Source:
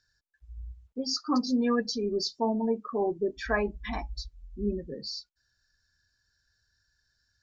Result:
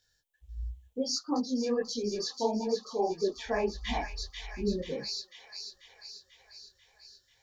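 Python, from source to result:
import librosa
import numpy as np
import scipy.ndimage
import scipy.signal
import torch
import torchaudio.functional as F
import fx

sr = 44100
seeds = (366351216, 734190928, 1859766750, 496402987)

y = fx.graphic_eq_31(x, sr, hz=(500, 800, 1250, 3150, 5000), db=(8, 6, -10, 9, -7))
y = fx.echo_wet_highpass(y, sr, ms=490, feedback_pct=62, hz=2200.0, wet_db=-5)
y = fx.rider(y, sr, range_db=4, speed_s=0.5)
y = fx.high_shelf(y, sr, hz=6300.0, db=10.5)
y = fx.notch(y, sr, hz=1600.0, q=9.8)
y = fx.detune_double(y, sr, cents=54)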